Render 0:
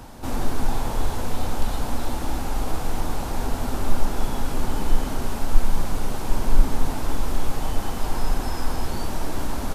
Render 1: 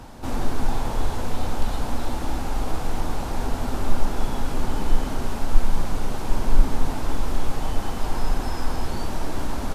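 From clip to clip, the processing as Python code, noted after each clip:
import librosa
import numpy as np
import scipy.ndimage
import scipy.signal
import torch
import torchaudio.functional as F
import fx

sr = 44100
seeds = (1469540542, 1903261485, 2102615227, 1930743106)

y = fx.high_shelf(x, sr, hz=10000.0, db=-8.0)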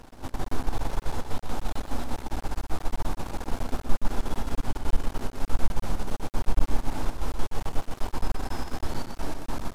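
y = np.maximum(x, 0.0)
y = y + 10.0 ** (-6.5 / 20.0) * np.pad(y, (int(123 * sr / 1000.0), 0))[:len(y)]
y = y * 10.0 ** (-3.0 / 20.0)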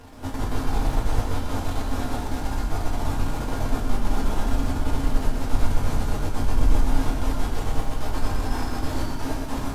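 y = fx.rev_fdn(x, sr, rt60_s=1.2, lf_ratio=1.5, hf_ratio=0.9, size_ms=66.0, drr_db=-3.5)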